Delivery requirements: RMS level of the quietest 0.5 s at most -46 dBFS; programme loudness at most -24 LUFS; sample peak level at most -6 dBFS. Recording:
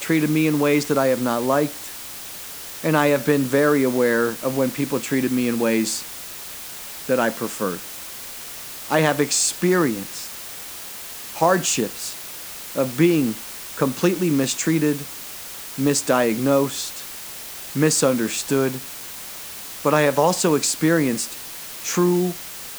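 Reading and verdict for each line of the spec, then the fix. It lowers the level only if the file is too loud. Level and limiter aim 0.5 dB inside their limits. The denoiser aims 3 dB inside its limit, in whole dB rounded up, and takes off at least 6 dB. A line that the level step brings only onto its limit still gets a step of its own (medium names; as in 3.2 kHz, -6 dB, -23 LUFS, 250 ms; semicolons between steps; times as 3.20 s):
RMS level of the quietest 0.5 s -35 dBFS: fail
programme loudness -21.0 LUFS: fail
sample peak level -3.5 dBFS: fail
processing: noise reduction 11 dB, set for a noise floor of -35 dBFS; trim -3.5 dB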